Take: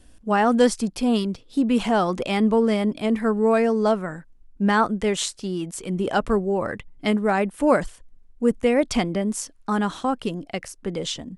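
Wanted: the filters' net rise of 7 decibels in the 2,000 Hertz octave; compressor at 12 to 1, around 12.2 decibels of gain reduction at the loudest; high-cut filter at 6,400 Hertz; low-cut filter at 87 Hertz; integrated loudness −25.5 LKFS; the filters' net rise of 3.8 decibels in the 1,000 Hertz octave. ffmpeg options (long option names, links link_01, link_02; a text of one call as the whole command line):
ffmpeg -i in.wav -af "highpass=87,lowpass=6400,equalizer=frequency=1000:width_type=o:gain=3,equalizer=frequency=2000:width_type=o:gain=8,acompressor=threshold=-23dB:ratio=12,volume=3dB" out.wav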